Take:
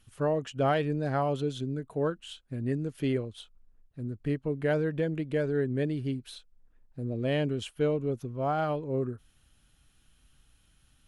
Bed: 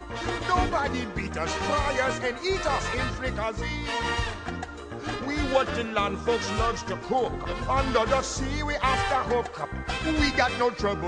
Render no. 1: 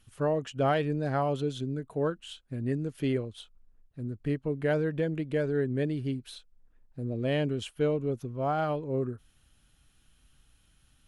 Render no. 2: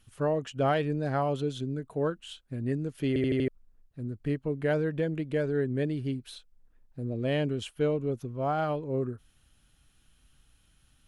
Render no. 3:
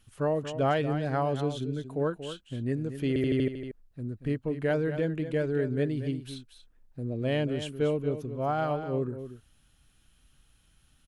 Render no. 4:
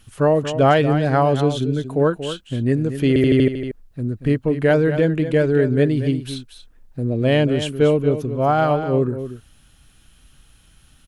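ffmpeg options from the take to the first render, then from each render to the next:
-af anull
-filter_complex "[0:a]asplit=6[a][b][c][d][e][f];[a]atrim=end=3.162[g];[b]atrim=start=3.078:end=3.162[h];[c]atrim=start=3.078:end=3.162[i];[d]atrim=start=3.078:end=3.162[j];[e]atrim=start=3.078:end=3.162[k];[f]atrim=start=3.478[l];[g][h]acrossfade=d=0.004:c1=hsin:c2=hsin[m];[m][i]acrossfade=d=0.004:c1=hsin:c2=hsin[n];[n][j]acrossfade=d=0.004:c1=hsin:c2=hsin[o];[o][k]acrossfade=d=0.004:c1=hsin:c2=hsin[p];[p][l]acrossfade=d=0.004:c1=hsin:c2=hsin"
-af "aecho=1:1:233:0.299"
-af "volume=11.5dB"

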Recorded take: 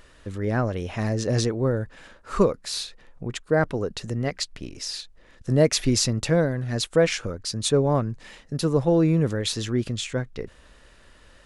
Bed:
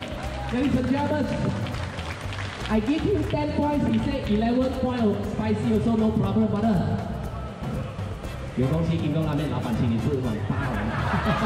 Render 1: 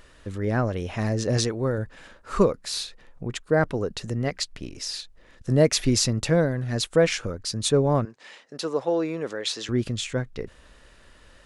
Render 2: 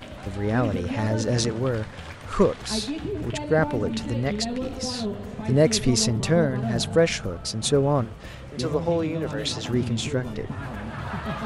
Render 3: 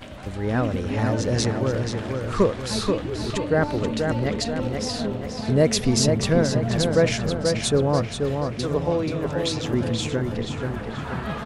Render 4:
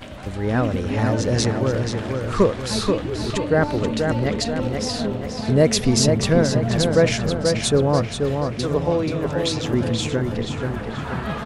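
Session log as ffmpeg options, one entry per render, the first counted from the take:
-filter_complex "[0:a]asettb=1/sr,asplit=3[a][b][c];[a]atrim=end=1.374[d];[b]atrim=start=1.37:end=1.78,asetpts=PTS-STARTPTS,afade=t=in:d=0.004:c=qsin,afade=t=out:st=0.406:d=0.004:c=qsin,tiltshelf=f=970:g=-3[e];[c]atrim=start=1.776[f];[d][e]acrossfade=d=0.004:c1=hsin:c2=qsin[g];[g][f]acrossfade=d=0.004:c1=qsin:c2=hsin,asettb=1/sr,asplit=3[h][i][j];[h]atrim=end=8.054[k];[i]atrim=start=8.05:end=9.69,asetpts=PTS-STARTPTS,afade=t=in:d=0.004:c=qsin,afade=t=out:st=1.636:d=0.004:c=qsin,highpass=440,lowpass=7.2k[l];[j]atrim=start=9.686[m];[k][l]acrossfade=d=0.004:c1=hsin:c2=qsin[n];[n][m]acrossfade=d=0.004:c1=qsin:c2=hsin"
-filter_complex "[1:a]volume=-7dB[a];[0:a][a]amix=inputs=2:normalize=0"
-filter_complex "[0:a]asplit=2[a][b];[b]adelay=482,lowpass=f=4k:p=1,volume=-4.5dB,asplit=2[c][d];[d]adelay=482,lowpass=f=4k:p=1,volume=0.53,asplit=2[e][f];[f]adelay=482,lowpass=f=4k:p=1,volume=0.53,asplit=2[g][h];[h]adelay=482,lowpass=f=4k:p=1,volume=0.53,asplit=2[i][j];[j]adelay=482,lowpass=f=4k:p=1,volume=0.53,asplit=2[k][l];[l]adelay=482,lowpass=f=4k:p=1,volume=0.53,asplit=2[m][n];[n]adelay=482,lowpass=f=4k:p=1,volume=0.53[o];[a][c][e][g][i][k][m][o]amix=inputs=8:normalize=0"
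-af "volume=2.5dB"

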